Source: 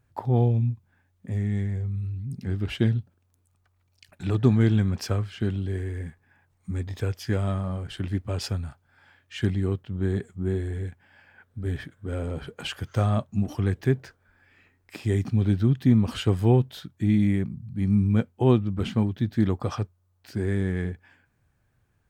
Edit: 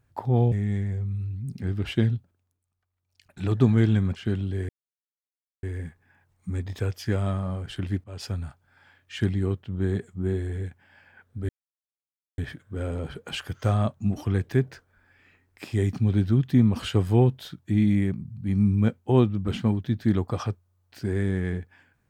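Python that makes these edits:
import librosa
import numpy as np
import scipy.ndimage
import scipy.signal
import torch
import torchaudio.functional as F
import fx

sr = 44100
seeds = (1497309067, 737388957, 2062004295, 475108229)

y = fx.edit(x, sr, fx.cut(start_s=0.52, length_s=0.83),
    fx.fade_down_up(start_s=2.94, length_s=1.39, db=-13.5, fade_s=0.48),
    fx.cut(start_s=4.99, length_s=0.32),
    fx.insert_silence(at_s=5.84, length_s=0.94),
    fx.fade_in_from(start_s=8.25, length_s=0.37, floor_db=-20.5),
    fx.insert_silence(at_s=11.7, length_s=0.89), tone=tone)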